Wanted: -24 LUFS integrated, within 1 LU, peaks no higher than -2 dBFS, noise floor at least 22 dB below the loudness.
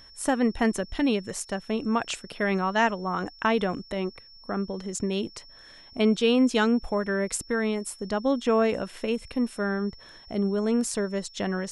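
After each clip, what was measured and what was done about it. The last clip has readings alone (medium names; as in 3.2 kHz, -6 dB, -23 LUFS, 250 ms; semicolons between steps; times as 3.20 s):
steady tone 5.4 kHz; tone level -49 dBFS; loudness -27.0 LUFS; peak level -9.5 dBFS; loudness target -24.0 LUFS
-> band-stop 5.4 kHz, Q 30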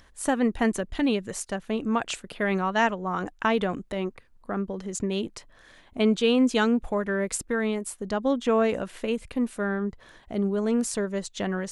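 steady tone not found; loudness -27.0 LUFS; peak level -9.5 dBFS; loudness target -24.0 LUFS
-> trim +3 dB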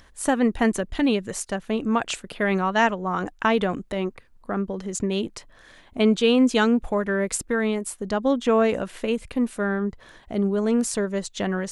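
loudness -24.0 LUFS; peak level -6.5 dBFS; noise floor -53 dBFS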